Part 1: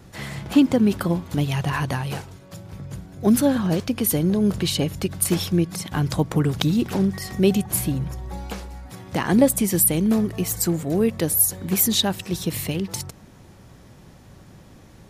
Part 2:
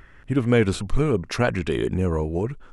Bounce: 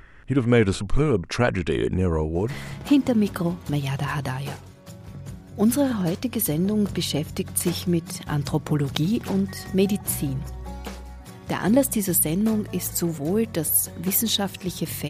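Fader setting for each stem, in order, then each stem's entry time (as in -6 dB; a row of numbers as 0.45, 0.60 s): -2.5, +0.5 dB; 2.35, 0.00 s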